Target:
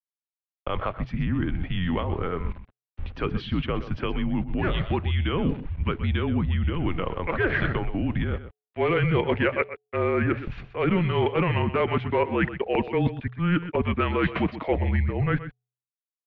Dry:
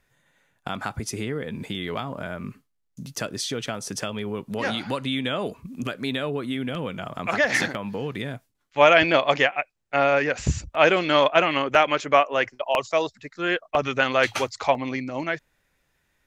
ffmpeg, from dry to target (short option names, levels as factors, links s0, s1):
-af "acontrast=86,adynamicequalizer=threshold=0.0178:dfrequency=330:dqfactor=2.7:tfrequency=330:tqfactor=2.7:attack=5:release=100:ratio=0.375:range=4:mode=boostabove:tftype=bell,aeval=exprs='val(0)*gte(abs(val(0)),0.0106)':c=same,lowshelf=f=440:g=7.5,areverse,acompressor=threshold=0.0891:ratio=6,areverse,bandreject=f=304.1:t=h:w=4,bandreject=f=608.2:t=h:w=4,bandreject=f=912.3:t=h:w=4,highpass=f=190:t=q:w=0.5412,highpass=f=190:t=q:w=1.307,lowpass=f=3300:t=q:w=0.5176,lowpass=f=3300:t=q:w=0.7071,lowpass=f=3300:t=q:w=1.932,afreqshift=-180,aecho=1:1:125:0.224"